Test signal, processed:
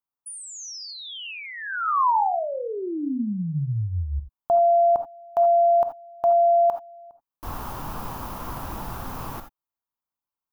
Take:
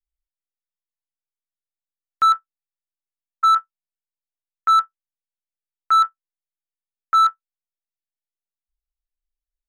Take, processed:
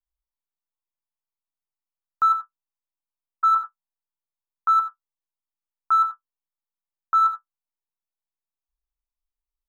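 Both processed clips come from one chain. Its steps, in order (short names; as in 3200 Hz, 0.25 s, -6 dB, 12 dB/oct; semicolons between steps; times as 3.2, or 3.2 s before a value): graphic EQ 500/1000/2000/4000/8000 Hz -6/+11/-11/-8/-12 dB; non-linear reverb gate 0.1 s rising, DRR 7.5 dB; gain -3.5 dB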